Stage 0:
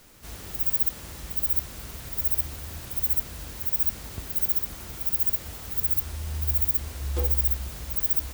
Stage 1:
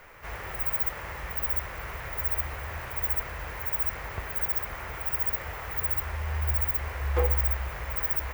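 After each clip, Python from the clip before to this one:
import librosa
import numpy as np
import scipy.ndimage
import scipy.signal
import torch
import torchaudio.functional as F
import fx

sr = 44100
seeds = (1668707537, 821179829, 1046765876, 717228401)

y = fx.graphic_eq_10(x, sr, hz=(250, 500, 1000, 2000, 4000, 8000, 16000), db=(-11, 6, 7, 11, -8, -9, -9))
y = y * 10.0 ** (1.5 / 20.0)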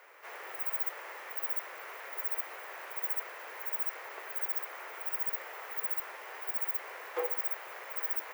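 y = scipy.signal.sosfilt(scipy.signal.butter(6, 360.0, 'highpass', fs=sr, output='sos'), x)
y = y * 10.0 ** (-5.5 / 20.0)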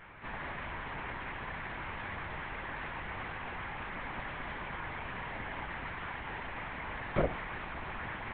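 y = fx.lpc_vocoder(x, sr, seeds[0], excitation='whisper', order=8)
y = y * 10.0 ** (5.0 / 20.0)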